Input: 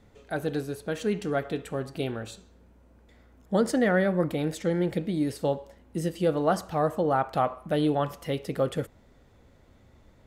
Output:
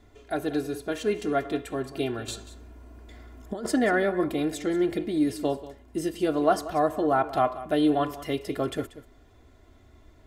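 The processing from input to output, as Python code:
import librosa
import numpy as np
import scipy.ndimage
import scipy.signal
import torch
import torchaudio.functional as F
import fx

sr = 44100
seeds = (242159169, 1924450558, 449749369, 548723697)

y = x + 0.72 * np.pad(x, (int(2.9 * sr / 1000.0), 0))[:len(x)]
y = fx.over_compress(y, sr, threshold_db=-32.0, ratio=-1.0, at=(2.28, 3.66))
y = y + 10.0 ** (-15.5 / 20.0) * np.pad(y, (int(186 * sr / 1000.0), 0))[:len(y)]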